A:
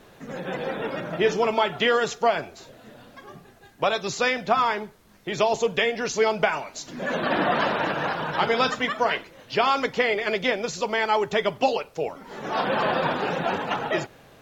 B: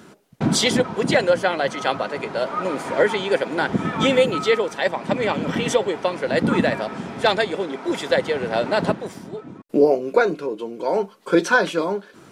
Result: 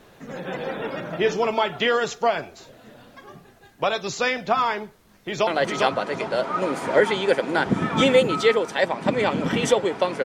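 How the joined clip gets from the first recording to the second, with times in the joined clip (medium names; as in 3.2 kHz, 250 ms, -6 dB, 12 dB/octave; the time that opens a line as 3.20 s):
A
4.86–5.47 s: echo throw 400 ms, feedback 30%, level -2 dB
5.47 s: go over to B from 1.50 s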